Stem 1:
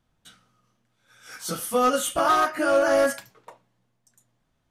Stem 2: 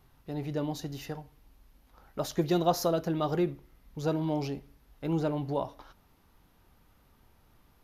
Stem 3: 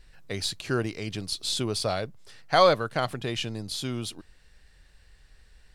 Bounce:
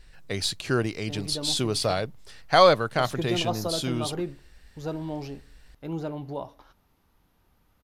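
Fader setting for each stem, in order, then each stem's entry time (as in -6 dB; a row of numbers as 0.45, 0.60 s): off, -3.0 dB, +2.5 dB; off, 0.80 s, 0.00 s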